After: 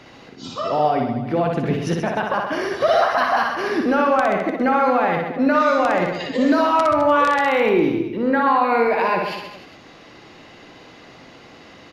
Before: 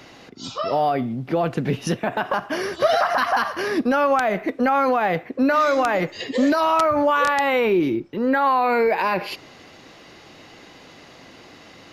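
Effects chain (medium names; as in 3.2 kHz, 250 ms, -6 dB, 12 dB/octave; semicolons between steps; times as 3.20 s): treble shelf 6.5 kHz -10.5 dB; reverse bouncing-ball echo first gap 60 ms, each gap 1.15×, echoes 5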